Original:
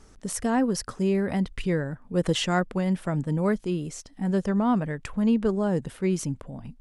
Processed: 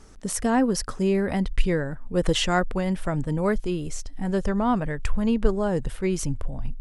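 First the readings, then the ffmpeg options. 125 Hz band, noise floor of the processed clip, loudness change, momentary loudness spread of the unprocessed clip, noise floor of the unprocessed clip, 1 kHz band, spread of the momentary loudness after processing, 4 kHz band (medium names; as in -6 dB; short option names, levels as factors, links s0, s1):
0.0 dB, -39 dBFS, +1.0 dB, 8 LU, -52 dBFS, +3.0 dB, 8 LU, +3.0 dB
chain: -af "asubboost=boost=9.5:cutoff=60,volume=1.41"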